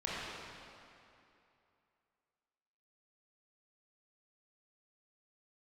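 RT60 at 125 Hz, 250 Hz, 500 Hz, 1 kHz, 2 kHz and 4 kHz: 2.6, 2.7, 2.7, 2.8, 2.5, 2.1 seconds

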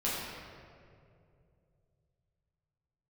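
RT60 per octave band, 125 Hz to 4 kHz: 3.9, 2.9, 2.9, 2.0, 1.7, 1.3 seconds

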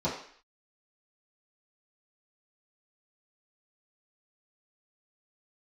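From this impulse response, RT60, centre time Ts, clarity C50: 0.55 s, 35 ms, 5.5 dB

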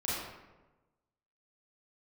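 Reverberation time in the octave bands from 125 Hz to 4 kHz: 1.3, 1.2, 1.2, 1.1, 0.90, 0.65 seconds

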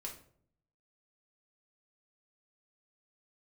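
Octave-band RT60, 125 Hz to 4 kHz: 1.0, 0.80, 0.65, 0.50, 0.40, 0.35 seconds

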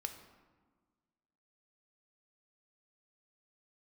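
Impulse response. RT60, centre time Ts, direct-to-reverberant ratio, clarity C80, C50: 1.5 s, 18 ms, 6.0 dB, 11.0 dB, 9.0 dB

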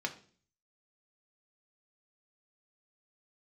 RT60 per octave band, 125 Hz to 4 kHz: 0.70, 0.60, 0.50, 0.40, 0.40, 0.45 seconds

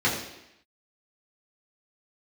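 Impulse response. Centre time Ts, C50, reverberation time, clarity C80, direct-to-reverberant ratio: 38 ms, 5.0 dB, 0.85 s, 7.0 dB, −7.5 dB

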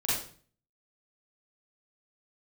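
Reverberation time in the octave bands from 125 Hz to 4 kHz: 0.70, 0.55, 0.50, 0.45, 0.40, 0.40 seconds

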